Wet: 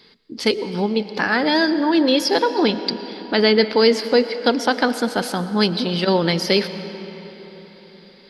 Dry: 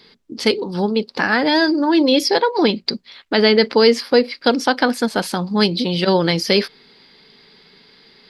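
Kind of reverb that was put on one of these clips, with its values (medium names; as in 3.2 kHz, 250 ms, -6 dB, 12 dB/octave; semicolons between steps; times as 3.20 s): algorithmic reverb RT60 4.4 s, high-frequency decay 0.65×, pre-delay 65 ms, DRR 11.5 dB; trim -2 dB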